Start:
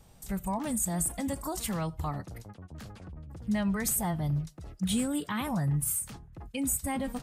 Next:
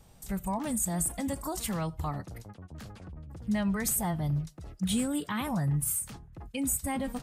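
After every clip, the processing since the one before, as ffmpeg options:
ffmpeg -i in.wav -af anull out.wav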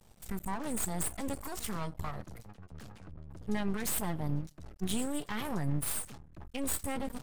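ffmpeg -i in.wav -af "aeval=exprs='max(val(0),0)':channel_layout=same" out.wav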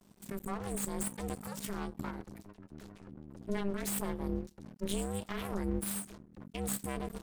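ffmpeg -i in.wav -af "aeval=exprs='val(0)*sin(2*PI*200*n/s)':channel_layout=same" out.wav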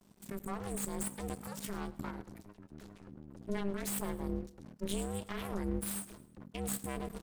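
ffmpeg -i in.wav -af "aecho=1:1:106|212|318:0.106|0.0466|0.0205,volume=-1.5dB" out.wav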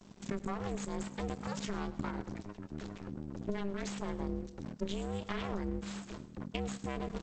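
ffmpeg -i in.wav -af "acompressor=threshold=-40dB:ratio=10,volume=8.5dB" -ar 16000 -c:a g722 out.g722

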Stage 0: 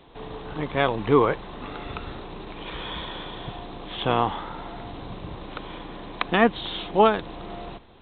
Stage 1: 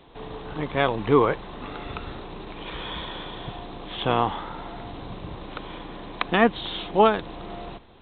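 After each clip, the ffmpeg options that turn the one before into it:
ffmpeg -i in.wav -af anull out.wav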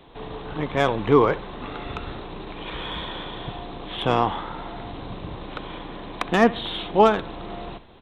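ffmpeg -i in.wav -filter_complex "[0:a]aecho=1:1:65|130|195|260:0.1|0.051|0.026|0.0133,acrossover=split=1000[link_01][link_02];[link_02]asoftclip=type=tanh:threshold=-20dB[link_03];[link_01][link_03]amix=inputs=2:normalize=0,volume=2dB" out.wav

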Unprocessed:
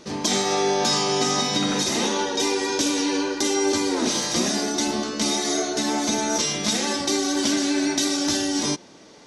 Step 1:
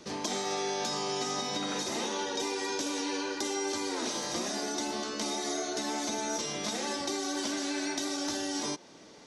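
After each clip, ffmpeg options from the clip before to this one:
ffmpeg -i in.wav -filter_complex "[0:a]acrossover=split=330|690|1400[link_01][link_02][link_03][link_04];[link_01]acompressor=threshold=-40dB:ratio=4[link_05];[link_02]acompressor=threshold=-33dB:ratio=4[link_06];[link_03]acompressor=threshold=-36dB:ratio=4[link_07];[link_04]acompressor=threshold=-31dB:ratio=4[link_08];[link_05][link_06][link_07][link_08]amix=inputs=4:normalize=0,volume=-4.5dB" out.wav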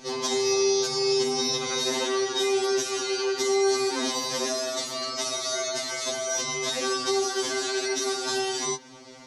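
ffmpeg -i in.wav -af "afftfilt=real='re*2.45*eq(mod(b,6),0)':imag='im*2.45*eq(mod(b,6),0)':win_size=2048:overlap=0.75,volume=8dB" out.wav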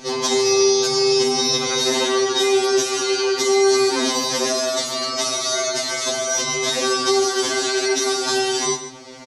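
ffmpeg -i in.wav -af "aecho=1:1:141:0.251,volume=7dB" out.wav

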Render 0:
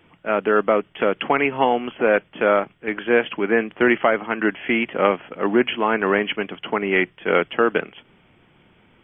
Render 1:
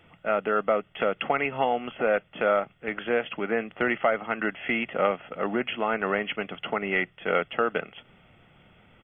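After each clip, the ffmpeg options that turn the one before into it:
ffmpeg -i in.wav -af "acompressor=threshold=-29dB:ratio=1.5,aecho=1:1:1.5:0.43,volume=-1.5dB" out.wav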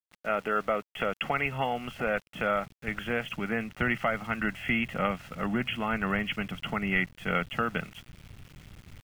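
ffmpeg -i in.wav -af "asubboost=boost=7.5:cutoff=140,aeval=exprs='val(0)*gte(abs(val(0)),0.00473)':channel_layout=same,equalizer=frequency=550:width=0.66:gain=-5" out.wav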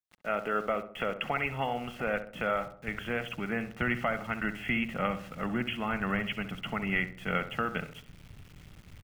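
ffmpeg -i in.wav -filter_complex "[0:a]asplit=2[link_01][link_02];[link_02]adelay=66,lowpass=frequency=1300:poles=1,volume=-9.5dB,asplit=2[link_03][link_04];[link_04]adelay=66,lowpass=frequency=1300:poles=1,volume=0.5,asplit=2[link_05][link_06];[link_06]adelay=66,lowpass=frequency=1300:poles=1,volume=0.5,asplit=2[link_07][link_08];[link_08]adelay=66,lowpass=frequency=1300:poles=1,volume=0.5,asplit=2[link_09][link_10];[link_10]adelay=66,lowpass=frequency=1300:poles=1,volume=0.5,asplit=2[link_11][link_12];[link_12]adelay=66,lowpass=frequency=1300:poles=1,volume=0.5[link_13];[link_01][link_03][link_05][link_07][link_09][link_11][link_13]amix=inputs=7:normalize=0,volume=-2.5dB" out.wav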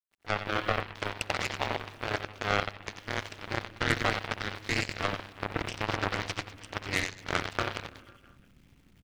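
ffmpeg -i in.wav -af "aecho=1:1:90|198|327.6|483.1|669.7:0.631|0.398|0.251|0.158|0.1,aeval=exprs='0.2*(cos(1*acos(clip(val(0)/0.2,-1,1)))-cos(1*PI/2))+0.0316*(cos(4*acos(clip(val(0)/0.2,-1,1)))-cos(4*PI/2))+0.0355*(cos(7*acos(clip(val(0)/0.2,-1,1)))-cos(7*PI/2))':channel_layout=same,aeval=exprs='val(0)*sin(2*PI*100*n/s)':channel_layout=same,volume=4dB" out.wav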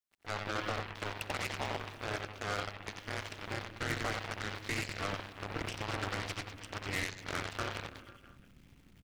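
ffmpeg -i in.wav -af "asoftclip=type=tanh:threshold=-25.5dB" out.wav

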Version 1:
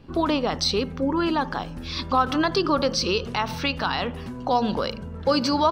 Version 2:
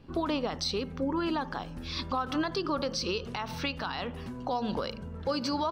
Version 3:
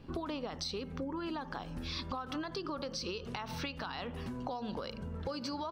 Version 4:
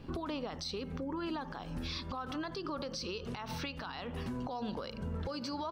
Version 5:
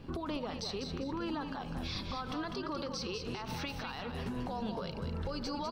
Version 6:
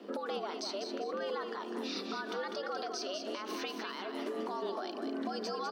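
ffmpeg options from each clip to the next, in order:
ffmpeg -i in.wav -af "alimiter=limit=-16dB:level=0:latency=1:release=203,volume=-5dB" out.wav
ffmpeg -i in.wav -af "acompressor=threshold=-37dB:ratio=6,volume=1dB" out.wav
ffmpeg -i in.wav -af "alimiter=level_in=9dB:limit=-24dB:level=0:latency=1:release=173,volume=-9dB,volume=3.5dB" out.wav
ffmpeg -i in.wav -filter_complex "[0:a]asplit=5[link_01][link_02][link_03][link_04][link_05];[link_02]adelay=199,afreqshift=-48,volume=-6dB[link_06];[link_03]adelay=398,afreqshift=-96,volume=-15.1dB[link_07];[link_04]adelay=597,afreqshift=-144,volume=-24.2dB[link_08];[link_05]adelay=796,afreqshift=-192,volume=-33.4dB[link_09];[link_01][link_06][link_07][link_08][link_09]amix=inputs=5:normalize=0" out.wav
ffmpeg -i in.wav -af "afreqshift=190" out.wav

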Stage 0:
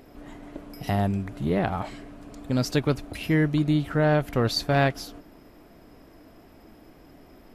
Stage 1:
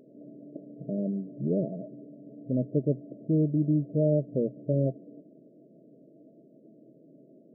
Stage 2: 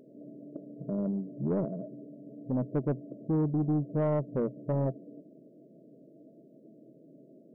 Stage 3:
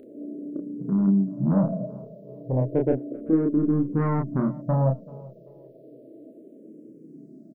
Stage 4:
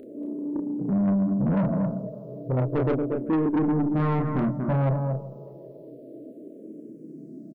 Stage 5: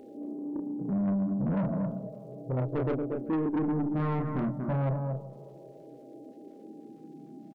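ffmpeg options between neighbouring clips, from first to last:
ffmpeg -i in.wav -af "afftfilt=real='re*between(b*sr/4096,120,670)':imag='im*between(b*sr/4096,120,670)':win_size=4096:overlap=0.75,volume=-2.5dB" out.wav
ffmpeg -i in.wav -af "asoftclip=type=tanh:threshold=-22dB" out.wav
ffmpeg -i in.wav -filter_complex "[0:a]asplit=2[link_01][link_02];[link_02]adelay=31,volume=-3.5dB[link_03];[link_01][link_03]amix=inputs=2:normalize=0,aecho=1:1:387|774:0.0841|0.0269,asplit=2[link_04][link_05];[link_05]afreqshift=-0.32[link_06];[link_04][link_06]amix=inputs=2:normalize=1,volume=9dB" out.wav
ffmpeg -i in.wav -af "aecho=1:1:233:0.422,asoftclip=type=tanh:threshold=-23dB,volume=3.5dB" out.wav
ffmpeg -i in.wav -af "aresample=22050,aresample=44100,aeval=exprs='val(0)*gte(abs(val(0)),0.00119)':channel_layout=same,aeval=exprs='val(0)+0.002*sin(2*PI*800*n/s)':channel_layout=same,volume=-5.5dB" out.wav

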